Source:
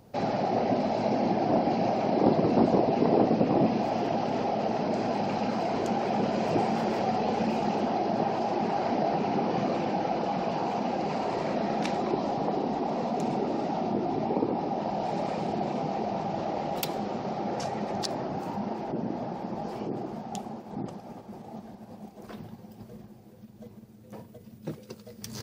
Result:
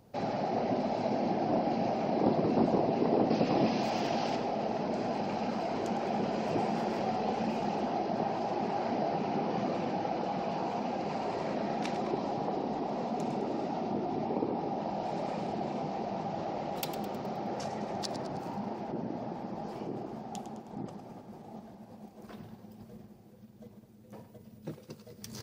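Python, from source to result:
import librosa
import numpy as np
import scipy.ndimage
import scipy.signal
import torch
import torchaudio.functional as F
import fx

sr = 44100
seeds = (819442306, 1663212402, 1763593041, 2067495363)

y = fx.high_shelf(x, sr, hz=2000.0, db=11.0, at=(3.3, 4.36))
y = fx.echo_split(y, sr, split_hz=480.0, low_ms=215, high_ms=105, feedback_pct=52, wet_db=-11.5)
y = F.gain(torch.from_numpy(y), -5.0).numpy()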